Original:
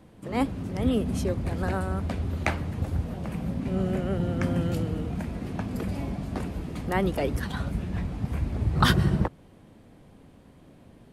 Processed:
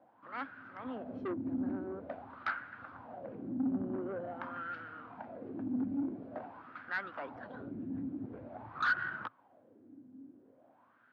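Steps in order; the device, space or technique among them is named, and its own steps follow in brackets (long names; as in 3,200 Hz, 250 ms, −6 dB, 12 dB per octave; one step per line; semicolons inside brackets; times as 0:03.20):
wah-wah guitar rig (LFO wah 0.47 Hz 270–1,500 Hz, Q 5.3; tube saturation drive 35 dB, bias 0.2; loudspeaker in its box 110–4,500 Hz, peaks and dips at 110 Hz +8 dB, 170 Hz −6 dB, 260 Hz +7 dB, 420 Hz −6 dB, 1,500 Hz +8 dB)
level +3.5 dB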